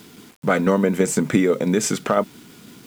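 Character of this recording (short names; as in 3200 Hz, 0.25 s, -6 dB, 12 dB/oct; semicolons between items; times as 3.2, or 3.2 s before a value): tremolo saw down 6 Hz, depth 35%; a quantiser's noise floor 8-bit, dither none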